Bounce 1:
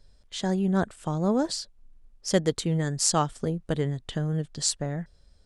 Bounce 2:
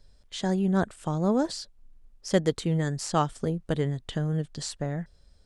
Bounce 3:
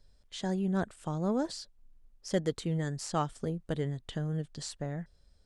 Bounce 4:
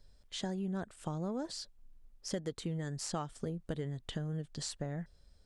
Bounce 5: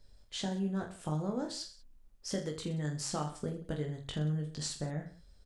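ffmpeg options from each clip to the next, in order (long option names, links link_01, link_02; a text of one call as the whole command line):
ffmpeg -i in.wav -filter_complex "[0:a]acrossover=split=2900[link_01][link_02];[link_02]acompressor=threshold=-33dB:ratio=4:attack=1:release=60[link_03];[link_01][link_03]amix=inputs=2:normalize=0" out.wav
ffmpeg -i in.wav -af "asoftclip=type=tanh:threshold=-10.5dB,volume=-5.5dB" out.wav
ffmpeg -i in.wav -af "acompressor=threshold=-35dB:ratio=6,volume=1dB" out.wav
ffmpeg -i in.wav -af "aecho=1:1:20|46|79.8|123.7|180.9:0.631|0.398|0.251|0.158|0.1" out.wav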